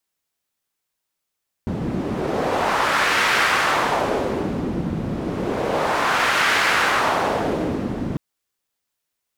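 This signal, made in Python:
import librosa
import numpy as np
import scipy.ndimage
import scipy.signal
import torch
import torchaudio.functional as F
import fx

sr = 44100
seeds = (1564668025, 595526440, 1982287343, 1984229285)

y = fx.wind(sr, seeds[0], length_s=6.5, low_hz=200.0, high_hz=1700.0, q=1.3, gusts=2, swing_db=7.0)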